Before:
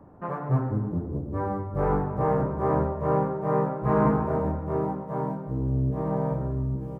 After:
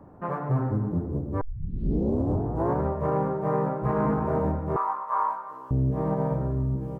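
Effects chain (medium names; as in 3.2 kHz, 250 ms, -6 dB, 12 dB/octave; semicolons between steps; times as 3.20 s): peak limiter -18 dBFS, peak gain reduction 8 dB; 1.41 s: tape start 1.42 s; 4.76–5.71 s: resonant high-pass 1.1 kHz, resonance Q 7.2; trim +1.5 dB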